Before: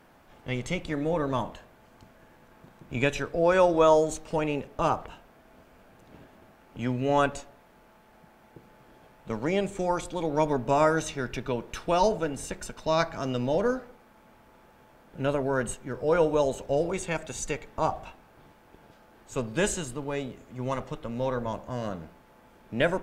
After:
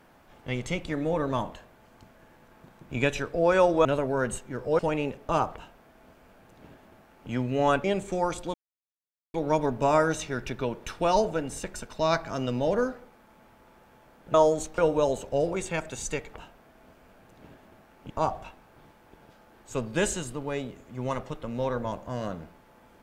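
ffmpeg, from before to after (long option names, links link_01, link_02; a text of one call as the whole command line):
ffmpeg -i in.wav -filter_complex "[0:a]asplit=9[link_01][link_02][link_03][link_04][link_05][link_06][link_07][link_08][link_09];[link_01]atrim=end=3.852[link_10];[link_02]atrim=start=15.208:end=16.152[link_11];[link_03]atrim=start=4.288:end=7.342[link_12];[link_04]atrim=start=9.508:end=10.21,asetpts=PTS-STARTPTS,afade=type=out:start_time=0.698:duration=0.004:curve=hsin,apad=pad_dur=0.8[link_13];[link_05]atrim=start=10.21:end=15.212,asetpts=PTS-STARTPTS,afade=type=in:duration=0.004:curve=hsin[link_14];[link_06]atrim=start=3.848:end=4.292[link_15];[link_07]atrim=start=16.148:end=17.712[link_16];[link_08]atrim=start=5.038:end=6.802[link_17];[link_09]atrim=start=17.708[link_18];[link_10][link_11]acrossfade=duration=0.004:curve1=hsin:curve2=hsin[link_19];[link_19][link_12]acrossfade=duration=0.004:curve1=hsin:curve2=hsin[link_20];[link_13][link_14]concat=n=2:v=0:a=1[link_21];[link_20][link_21]acrossfade=duration=0.004:curve1=hsin:curve2=hsin[link_22];[link_22][link_15]acrossfade=duration=0.004:curve1=hsin:curve2=hsin[link_23];[link_23][link_16]acrossfade=duration=0.004:curve1=hsin:curve2=hsin[link_24];[link_24][link_17]acrossfade=duration=0.004:curve1=hsin:curve2=hsin[link_25];[link_25][link_18]acrossfade=duration=0.004:curve1=hsin:curve2=hsin" out.wav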